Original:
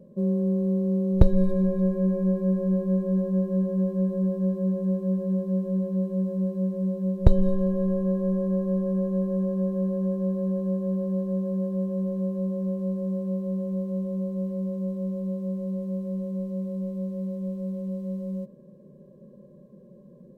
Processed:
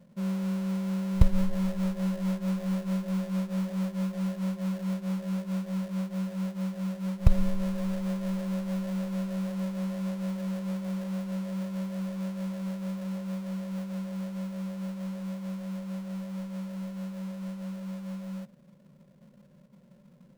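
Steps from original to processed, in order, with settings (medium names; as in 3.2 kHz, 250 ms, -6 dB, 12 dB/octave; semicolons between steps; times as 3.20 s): peaking EQ 380 Hz -13.5 dB 0.84 oct; in parallel at -5 dB: sample-rate reducer 1.2 kHz, jitter 20%; on the sum: trim -6.5 dB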